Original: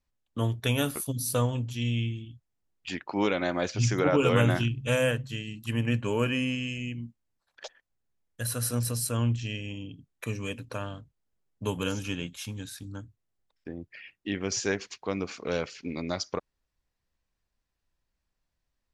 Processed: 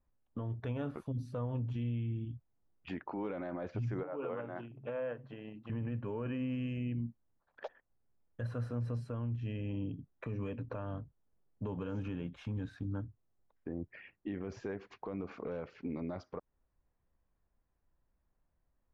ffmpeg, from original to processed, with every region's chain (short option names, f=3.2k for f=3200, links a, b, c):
-filter_complex "[0:a]asettb=1/sr,asplit=3[a][b][c];[a]atrim=end=4.034[d];[b]atrim=start=4.03:end=5.7,asetpts=PTS-STARTPTS,afade=t=in:d=0.004:c=qsin,afade=t=out:st=1.666:d=0.004:c=qsin,aemphasis=mode=reproduction:type=riaa,acompressor=threshold=-26dB:ratio=12:attack=3.2:release=140:knee=1:detection=peak,highpass=560,lowpass=7.4k[e];[c]atrim=start=5.696[f];[d][e]acrossfade=d=0.004:c1=hsin:c2=qsin[g];[g][f]acrossfade=d=0.004:c1=qsin:c2=hsin,acompressor=threshold=-34dB:ratio=6,lowpass=1.2k,alimiter=level_in=9.5dB:limit=-24dB:level=0:latency=1:release=10,volume=-9.5dB,volume=3.5dB"